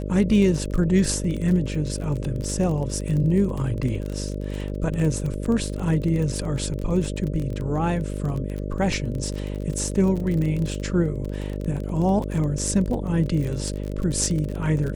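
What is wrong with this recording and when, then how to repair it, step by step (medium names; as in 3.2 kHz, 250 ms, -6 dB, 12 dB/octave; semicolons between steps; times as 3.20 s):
buzz 50 Hz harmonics 12 -29 dBFS
crackle 25 per s -27 dBFS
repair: de-click; de-hum 50 Hz, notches 12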